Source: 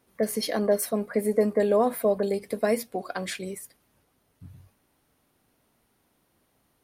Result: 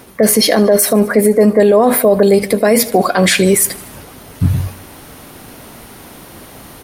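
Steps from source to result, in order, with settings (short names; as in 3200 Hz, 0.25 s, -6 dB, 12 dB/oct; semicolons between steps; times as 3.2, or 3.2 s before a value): reverse; compressor 5:1, threshold -37 dBFS, peak gain reduction 18 dB; reverse; feedback echo 76 ms, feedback 59%, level -22.5 dB; maximiser +34.5 dB; gain -1 dB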